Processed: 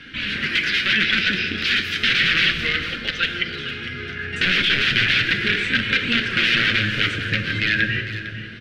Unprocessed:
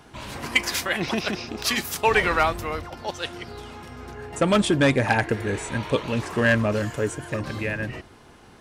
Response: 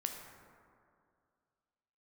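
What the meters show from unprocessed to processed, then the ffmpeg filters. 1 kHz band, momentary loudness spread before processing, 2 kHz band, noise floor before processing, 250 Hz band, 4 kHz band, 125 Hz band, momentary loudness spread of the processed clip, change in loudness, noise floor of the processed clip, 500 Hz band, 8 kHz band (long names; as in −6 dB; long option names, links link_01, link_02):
−6.0 dB, 17 LU, +8.5 dB, −50 dBFS, −2.5 dB, +12.0 dB, −0.5 dB, 11 LU, +5.0 dB, −32 dBFS, −9.5 dB, −7.0 dB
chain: -filter_complex "[0:a]aeval=exprs='(mod(8.91*val(0)+1,2)-1)/8.91':channel_layout=same,acompressor=threshold=-29dB:ratio=3,firequalizer=gain_entry='entry(150,0);entry(440,-8);entry(900,-29);entry(1500,7);entry(3000,9);entry(7100,-17);entry(12000,-23)':delay=0.05:min_phase=1,flanger=delay=3.7:depth=7.2:regen=37:speed=0.34:shape=sinusoidal,aecho=1:1:453:0.224,asplit=2[link_01][link_02];[1:a]atrim=start_sample=2205,asetrate=30870,aresample=44100[link_03];[link_02][link_03]afir=irnorm=-1:irlink=0,volume=3.5dB[link_04];[link_01][link_04]amix=inputs=2:normalize=0,acrossover=split=5400[link_05][link_06];[link_06]acompressor=threshold=-47dB:ratio=4:attack=1:release=60[link_07];[link_05][link_07]amix=inputs=2:normalize=0,lowshelf=frequency=65:gain=-8,bandreject=frequency=60:width_type=h:width=6,bandreject=frequency=120:width_type=h:width=6,volume=4.5dB"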